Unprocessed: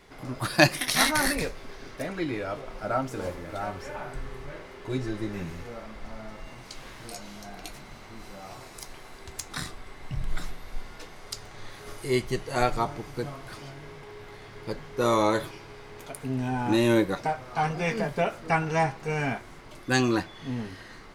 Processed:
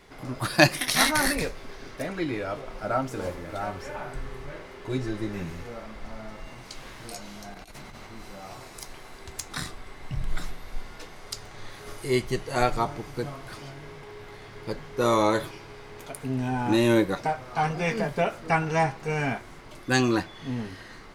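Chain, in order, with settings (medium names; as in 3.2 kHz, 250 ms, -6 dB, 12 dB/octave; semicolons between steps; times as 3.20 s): 7.54–8.07 s: compressor with a negative ratio -44 dBFS, ratio -0.5; trim +1 dB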